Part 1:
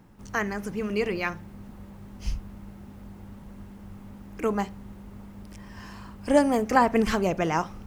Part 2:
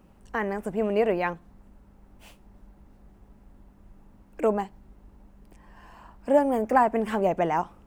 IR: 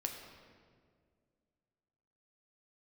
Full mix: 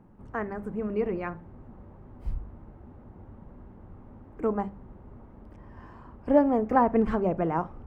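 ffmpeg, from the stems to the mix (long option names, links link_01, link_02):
-filter_complex "[0:a]lowpass=1100,bandreject=frequency=50:width_type=h:width=6,bandreject=frequency=100:width_type=h:width=6,bandreject=frequency=150:width_type=h:width=6,bandreject=frequency=200:width_type=h:width=6,volume=0dB[link_01];[1:a]acompressor=threshold=-27dB:ratio=6,volume=-1,volume=-17dB[link_02];[link_01][link_02]amix=inputs=2:normalize=0"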